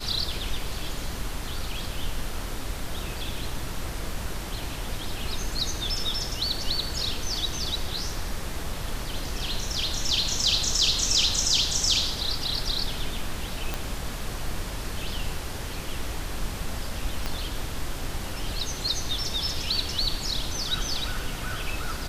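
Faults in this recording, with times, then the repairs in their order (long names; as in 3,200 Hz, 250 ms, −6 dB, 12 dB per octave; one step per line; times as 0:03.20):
0:13.74: click
0:17.26: click −14 dBFS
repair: click removal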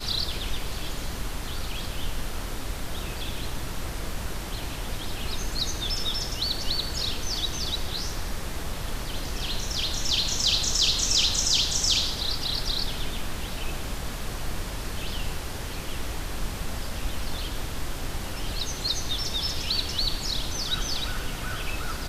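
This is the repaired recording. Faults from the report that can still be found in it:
0:17.26: click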